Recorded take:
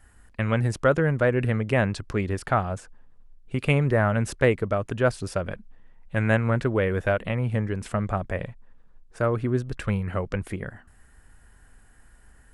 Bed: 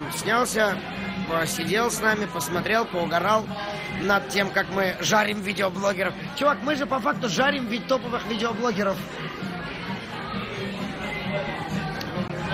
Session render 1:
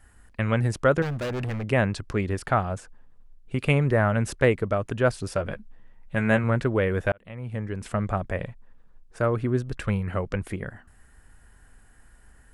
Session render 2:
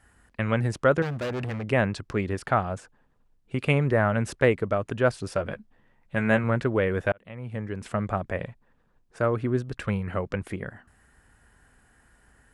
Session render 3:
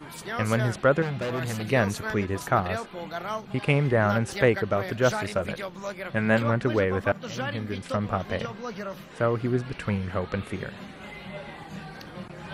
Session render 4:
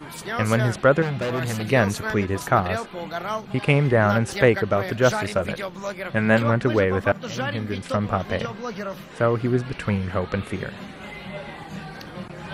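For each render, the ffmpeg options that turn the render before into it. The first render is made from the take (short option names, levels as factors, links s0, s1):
-filter_complex "[0:a]asettb=1/sr,asplit=3[s0][s1][s2];[s0]atrim=end=1.024[s3];[s1]atrim=start=1.02:end=1.64,asetpts=PTS-STARTPTS,afade=t=in:d=0.004:c=qsin,afade=t=out:st=0.616:d=0.004:c=qsin,asoftclip=type=hard:threshold=0.0447[s4];[s2]atrim=start=1.636[s5];[s3][s4]acrossfade=d=0.004:c1=hsin:c2=qsin[s6];[s6][s5]acrossfade=d=0.004:c1=qsin:c2=hsin,asettb=1/sr,asplit=3[s7][s8][s9];[s7]atrim=end=5.344[s10];[s8]atrim=start=5.34:end=6.44,asetpts=PTS-STARTPTS,afade=t=in:d=0.004:c=qsin,afade=t=out:st=1.096:d=0.004:c=qsin,asplit=2[s11][s12];[s12]adelay=14,volume=0.398[s13];[s11][s13]amix=inputs=2:normalize=0,atrim=end_sample=48510[s14];[s9]atrim=start=6.436[s15];[s10][s14]acrossfade=d=0.004:c1=hsin:c2=qsin[s16];[s16][s15]acrossfade=d=0.004:c1=qsin:c2=hsin,asplit=2[s17][s18];[s17]atrim=end=7.12,asetpts=PTS-STARTPTS,afade=t=out:st=7.116:d=0.004:c=hsin[s19];[s18]atrim=start=7.12,asetpts=PTS-STARTPTS,afade=t=in:d=0.88[s20];[s19][s20]concat=n=2:v=0:a=1"
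-af "highpass=f=100:p=1,highshelf=f=7900:g=-6.5"
-filter_complex "[1:a]volume=0.282[s0];[0:a][s0]amix=inputs=2:normalize=0"
-af "volume=1.58"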